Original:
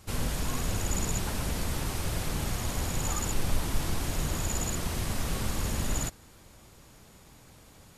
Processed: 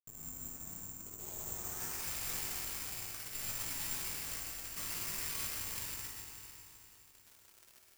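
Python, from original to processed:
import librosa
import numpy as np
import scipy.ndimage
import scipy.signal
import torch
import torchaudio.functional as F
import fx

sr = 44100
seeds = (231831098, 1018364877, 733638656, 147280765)

y = F.preemphasis(torch.from_numpy(x), 0.9).numpy()
y = fx.dereverb_blind(y, sr, rt60_s=1.6)
y = fx.low_shelf(y, sr, hz=100.0, db=-5.0)
y = fx.over_compress(y, sr, threshold_db=-46.0, ratio=-0.5)
y = fx.filter_sweep_lowpass(y, sr, from_hz=220.0, to_hz=2400.0, start_s=0.69, end_s=2.02, q=1.7)
y = fx.quant_dither(y, sr, seeds[0], bits=10, dither='none')
y = fx.doubler(y, sr, ms=19.0, db=-3)
y = y + 10.0 ** (-9.0 / 20.0) * np.pad(y, (int(132 * sr / 1000.0), 0))[:len(y)]
y = fx.rev_spring(y, sr, rt60_s=3.5, pass_ms=(43, 51), chirp_ms=40, drr_db=-1.5)
y = (np.kron(y[::6], np.eye(6)[0]) * 6)[:len(y)]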